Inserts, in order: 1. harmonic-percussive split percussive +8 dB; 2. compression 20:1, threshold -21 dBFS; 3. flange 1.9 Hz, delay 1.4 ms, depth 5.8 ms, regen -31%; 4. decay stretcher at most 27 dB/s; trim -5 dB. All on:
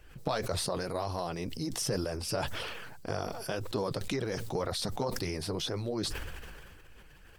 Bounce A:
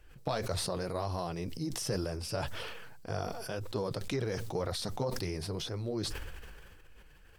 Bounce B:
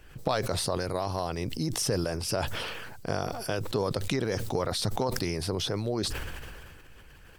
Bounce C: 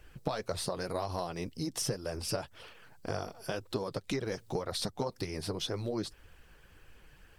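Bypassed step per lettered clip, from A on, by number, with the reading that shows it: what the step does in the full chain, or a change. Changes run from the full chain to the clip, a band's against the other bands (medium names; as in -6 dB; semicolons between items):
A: 1, 125 Hz band +3.0 dB; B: 3, loudness change +4.0 LU; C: 4, crest factor change +2.0 dB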